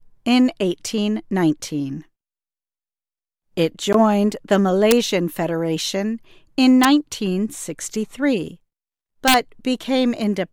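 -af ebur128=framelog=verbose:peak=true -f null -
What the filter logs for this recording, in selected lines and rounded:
Integrated loudness:
  I:         -19.6 LUFS
  Threshold: -29.9 LUFS
Loudness range:
  LRA:         4.6 LU
  Threshold: -40.5 LUFS
  LRA low:   -23.1 LUFS
  LRA high:  -18.5 LUFS
True peak:
  Peak:       -2.0 dBFS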